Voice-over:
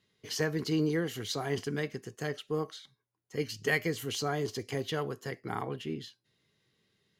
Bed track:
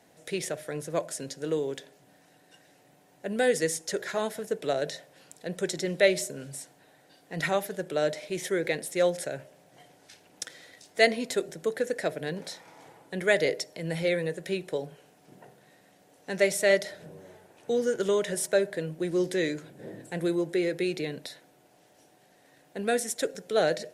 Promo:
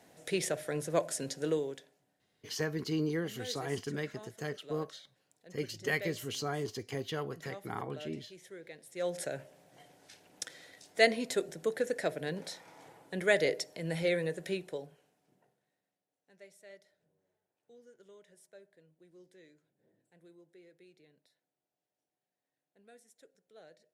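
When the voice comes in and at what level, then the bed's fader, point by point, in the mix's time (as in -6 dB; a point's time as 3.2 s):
2.20 s, -3.5 dB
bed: 1.46 s -0.5 dB
2.18 s -20.5 dB
8.8 s -20.5 dB
9.21 s -3.5 dB
14.47 s -3.5 dB
16.06 s -31.5 dB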